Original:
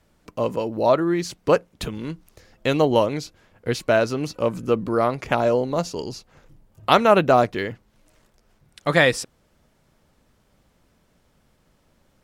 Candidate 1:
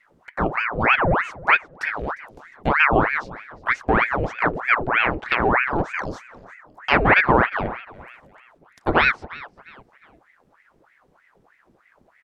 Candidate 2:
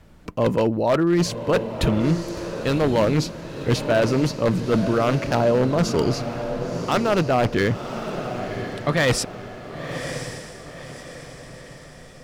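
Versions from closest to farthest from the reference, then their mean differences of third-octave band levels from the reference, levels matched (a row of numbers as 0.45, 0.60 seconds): 2, 1; 7.5, 11.5 decibels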